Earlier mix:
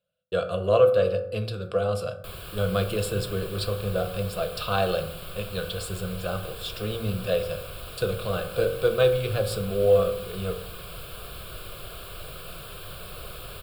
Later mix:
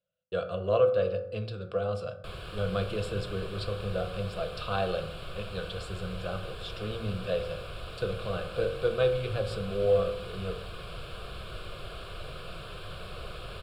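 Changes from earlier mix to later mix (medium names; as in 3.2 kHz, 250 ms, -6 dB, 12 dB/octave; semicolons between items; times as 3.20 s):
speech -5.0 dB; master: add distance through air 89 m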